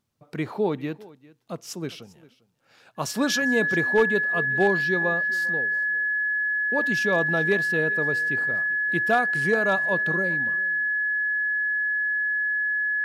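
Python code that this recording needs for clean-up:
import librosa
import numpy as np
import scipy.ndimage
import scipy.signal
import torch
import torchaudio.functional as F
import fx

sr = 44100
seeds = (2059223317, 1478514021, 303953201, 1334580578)

y = fx.fix_declip(x, sr, threshold_db=-12.0)
y = fx.notch(y, sr, hz=1700.0, q=30.0)
y = fx.fix_echo_inverse(y, sr, delay_ms=399, level_db=-21.5)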